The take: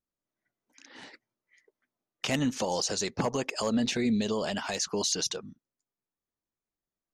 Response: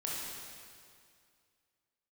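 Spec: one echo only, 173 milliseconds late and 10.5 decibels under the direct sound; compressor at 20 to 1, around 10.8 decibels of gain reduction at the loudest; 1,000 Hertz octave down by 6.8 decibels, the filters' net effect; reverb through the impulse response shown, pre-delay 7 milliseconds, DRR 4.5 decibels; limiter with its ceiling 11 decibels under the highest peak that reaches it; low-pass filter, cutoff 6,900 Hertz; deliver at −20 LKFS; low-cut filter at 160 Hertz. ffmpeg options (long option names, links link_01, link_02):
-filter_complex "[0:a]highpass=160,lowpass=6900,equalizer=frequency=1000:width_type=o:gain=-9,acompressor=threshold=-35dB:ratio=20,alimiter=level_in=6.5dB:limit=-24dB:level=0:latency=1,volume=-6.5dB,aecho=1:1:173:0.299,asplit=2[link_01][link_02];[1:a]atrim=start_sample=2205,adelay=7[link_03];[link_02][link_03]afir=irnorm=-1:irlink=0,volume=-8dB[link_04];[link_01][link_04]amix=inputs=2:normalize=0,volume=20dB"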